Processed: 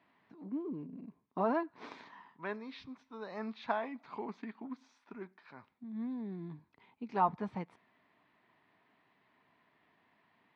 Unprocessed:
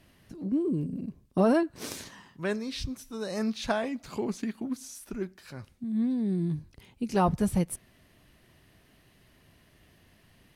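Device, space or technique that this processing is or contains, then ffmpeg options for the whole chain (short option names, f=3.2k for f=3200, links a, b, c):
phone earpiece: -af "highpass=330,equalizer=f=360:t=q:w=4:g=-6,equalizer=f=540:t=q:w=4:g=-9,equalizer=f=960:t=q:w=4:g=7,equalizer=f=1.6k:t=q:w=4:g=-3,equalizer=f=2.9k:t=q:w=4:g=-9,lowpass=f=3.1k:w=0.5412,lowpass=f=3.1k:w=1.3066,volume=-4dB"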